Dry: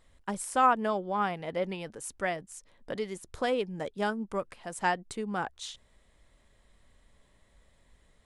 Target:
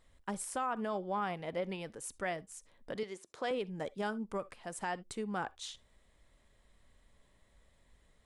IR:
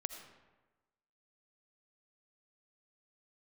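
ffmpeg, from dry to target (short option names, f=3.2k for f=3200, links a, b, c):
-filter_complex "[0:a]asettb=1/sr,asplit=3[a][b][c];[a]atrim=end=3.034[d];[b]atrim=start=3.03:end=3.51,asetpts=PTS-STARTPTS,afade=t=in:d=0.004:c=qsin,afade=t=out:st=0.476:d=0.004:c=qsin,highpass=300,lowpass=7.4k[e];[c]atrim=start=3.506[f];[d][e]acrossfade=d=0.004:c1=hsin:c2=qsin[g];[g][f]acrossfade=d=0.004:c1=qsin:c2=hsin,asplit=2[h][i];[1:a]atrim=start_sample=2205,afade=t=out:st=0.2:d=0.01,atrim=end_sample=9261,asetrate=79380,aresample=44100[j];[i][j]afir=irnorm=-1:irlink=0,volume=-5dB[k];[h][k]amix=inputs=2:normalize=0,alimiter=limit=-21dB:level=0:latency=1:release=66,volume=-5.5dB"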